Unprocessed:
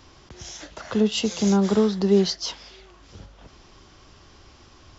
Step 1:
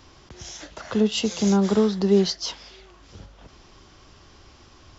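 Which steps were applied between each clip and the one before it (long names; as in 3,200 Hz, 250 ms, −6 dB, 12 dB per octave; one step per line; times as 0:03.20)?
every ending faded ahead of time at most 450 dB per second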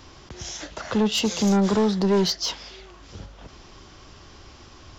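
soft clipping −19.5 dBFS, distortion −10 dB
level +4 dB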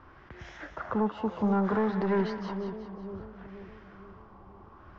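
auto-filter low-pass sine 0.62 Hz 930–1,900 Hz
echo with a time of its own for lows and highs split 700 Hz, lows 478 ms, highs 183 ms, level −8.5 dB
level −7.5 dB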